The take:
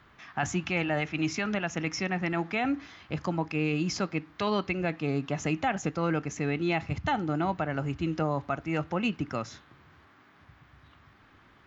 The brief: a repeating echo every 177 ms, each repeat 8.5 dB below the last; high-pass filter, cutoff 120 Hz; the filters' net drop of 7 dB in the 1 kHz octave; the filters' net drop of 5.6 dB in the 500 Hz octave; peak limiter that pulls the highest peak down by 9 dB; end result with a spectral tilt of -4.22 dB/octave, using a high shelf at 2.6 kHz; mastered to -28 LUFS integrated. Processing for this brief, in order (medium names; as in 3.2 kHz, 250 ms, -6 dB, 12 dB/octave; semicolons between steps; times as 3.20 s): high-pass 120 Hz; peaking EQ 500 Hz -5.5 dB; peaking EQ 1 kHz -9 dB; treble shelf 2.6 kHz +7.5 dB; peak limiter -25 dBFS; feedback delay 177 ms, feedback 38%, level -8.5 dB; trim +6.5 dB